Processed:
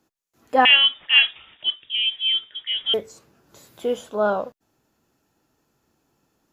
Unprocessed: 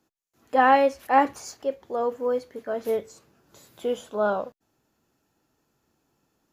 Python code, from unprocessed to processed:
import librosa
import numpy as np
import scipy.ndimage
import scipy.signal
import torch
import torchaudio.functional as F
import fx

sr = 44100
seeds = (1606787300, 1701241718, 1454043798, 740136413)

y = fx.freq_invert(x, sr, carrier_hz=3600, at=(0.65, 2.94))
y = y * librosa.db_to_amplitude(3.0)